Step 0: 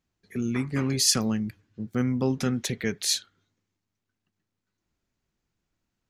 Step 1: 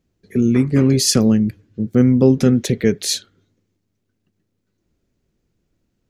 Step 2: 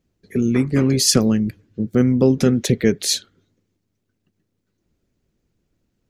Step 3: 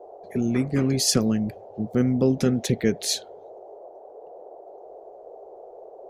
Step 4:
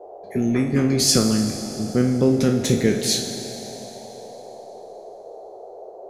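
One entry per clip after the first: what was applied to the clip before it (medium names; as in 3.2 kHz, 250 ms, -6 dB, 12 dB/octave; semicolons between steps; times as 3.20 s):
resonant low shelf 660 Hz +7.5 dB, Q 1.5; trim +4.5 dB
harmonic-percussive split percussive +5 dB; trim -3.5 dB
band noise 380–750 Hz -38 dBFS; trim -5.5 dB
spectral sustain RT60 0.36 s; Schroeder reverb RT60 3.4 s, DRR 7 dB; trim +2 dB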